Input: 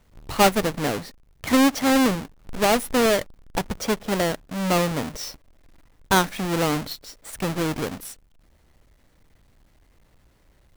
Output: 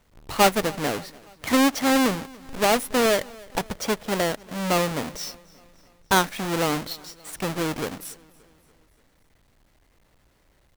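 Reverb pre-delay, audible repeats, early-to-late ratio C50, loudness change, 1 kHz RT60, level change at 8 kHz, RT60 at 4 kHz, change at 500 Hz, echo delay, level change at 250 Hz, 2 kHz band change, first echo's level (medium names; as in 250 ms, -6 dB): no reverb, 3, no reverb, -1.0 dB, no reverb, 0.0 dB, no reverb, -1.0 dB, 288 ms, -2.5 dB, 0.0 dB, -23.5 dB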